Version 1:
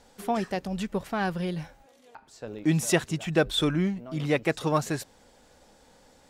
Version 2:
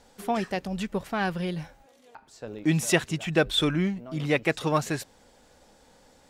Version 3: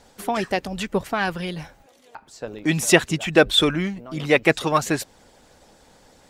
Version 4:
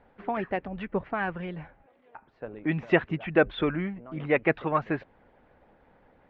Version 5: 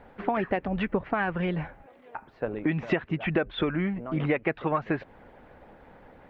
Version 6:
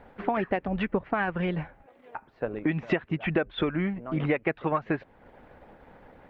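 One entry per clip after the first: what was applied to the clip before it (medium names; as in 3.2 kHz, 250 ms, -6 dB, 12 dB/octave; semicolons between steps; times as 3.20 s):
dynamic bell 2.5 kHz, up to +4 dB, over -42 dBFS, Q 1.1
harmonic-percussive split percussive +8 dB
inverse Chebyshev low-pass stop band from 9 kHz, stop band 70 dB; trim -6 dB
compression 12:1, threshold -31 dBFS, peak gain reduction 16.5 dB; trim +8.5 dB
transient shaper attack 0 dB, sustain -5 dB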